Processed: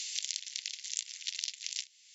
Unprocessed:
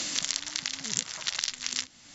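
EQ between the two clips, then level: steep high-pass 2200 Hz 36 dB/oct; notch 8000 Hz, Q 18; -6.0 dB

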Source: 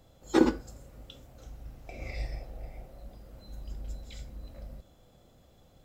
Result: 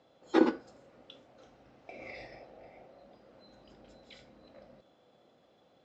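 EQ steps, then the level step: BPF 280–5500 Hz; air absorption 98 m; 0.0 dB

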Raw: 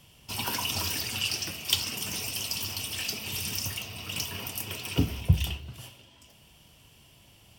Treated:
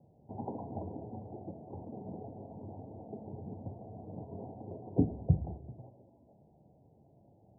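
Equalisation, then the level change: Bessel high-pass 150 Hz, order 2; steep low-pass 820 Hz 72 dB/oct; +1.0 dB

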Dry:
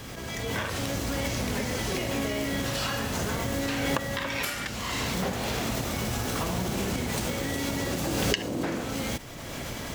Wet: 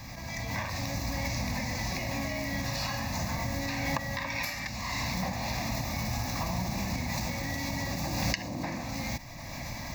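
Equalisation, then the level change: fixed phaser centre 2100 Hz, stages 8; 0.0 dB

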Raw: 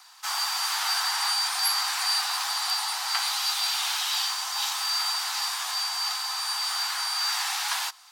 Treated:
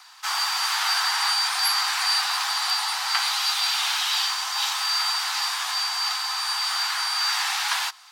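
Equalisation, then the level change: HPF 1300 Hz 6 dB/oct; high shelf 4500 Hz -10.5 dB; +8.5 dB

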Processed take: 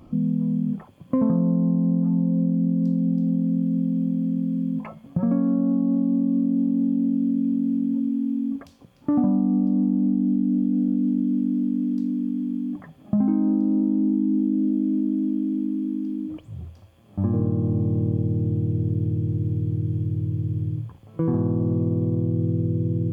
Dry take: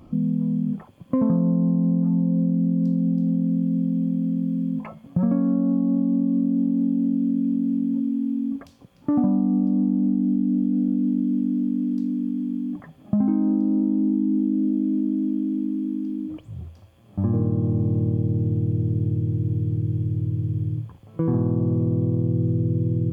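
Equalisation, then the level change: notches 60/120/180 Hz; 0.0 dB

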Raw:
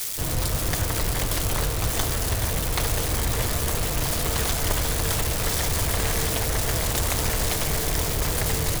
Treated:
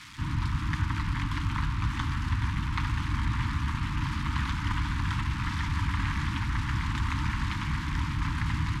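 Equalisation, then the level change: HPF 50 Hz; elliptic band-stop 290–960 Hz, stop band 40 dB; LPF 2100 Hz 12 dB/oct; 0.0 dB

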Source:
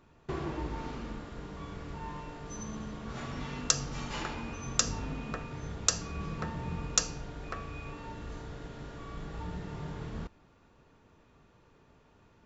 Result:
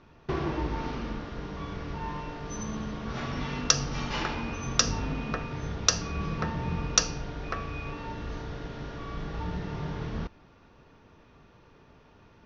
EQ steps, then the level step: elliptic low-pass 5900 Hz, stop band 40 dB; +6.5 dB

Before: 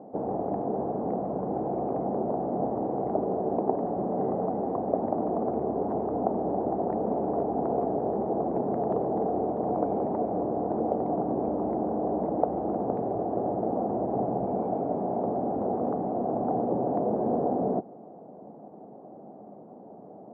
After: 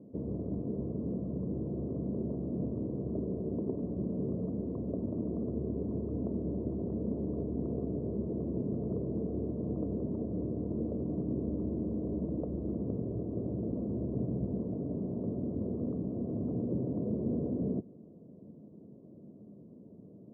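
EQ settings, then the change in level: running mean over 56 samples; air absorption 490 m; bell 61 Hz +14.5 dB 2.8 oct; -5.0 dB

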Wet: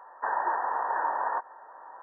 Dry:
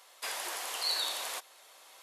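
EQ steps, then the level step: brick-wall FIR low-pass 1900 Hz; bell 910 Hz +14 dB 0.36 oct; +7.5 dB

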